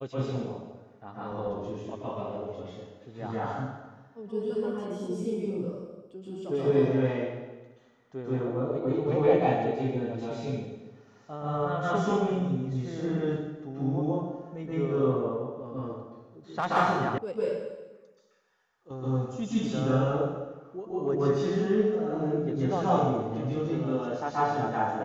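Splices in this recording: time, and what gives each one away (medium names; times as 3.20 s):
17.18 s: sound stops dead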